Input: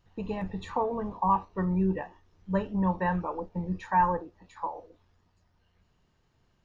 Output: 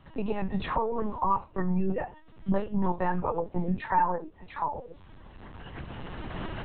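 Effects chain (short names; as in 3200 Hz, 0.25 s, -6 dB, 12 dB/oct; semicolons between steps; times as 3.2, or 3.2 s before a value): recorder AGC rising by 17 dB/s; 1.91–4.08 dynamic EQ 460 Hz, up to +3 dB, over -41 dBFS, Q 0.93; LPC vocoder at 8 kHz pitch kept; three-band squash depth 40%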